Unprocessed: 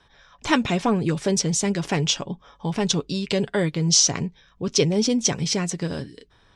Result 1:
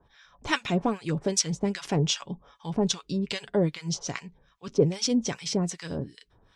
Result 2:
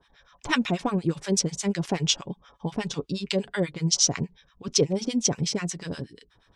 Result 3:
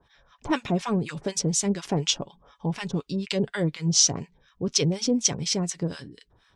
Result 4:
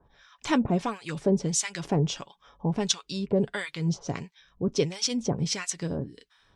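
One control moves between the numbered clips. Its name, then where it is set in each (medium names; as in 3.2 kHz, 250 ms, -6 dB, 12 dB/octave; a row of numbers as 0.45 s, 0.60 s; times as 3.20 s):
harmonic tremolo, rate: 2.5 Hz, 8.3 Hz, 4.1 Hz, 1.5 Hz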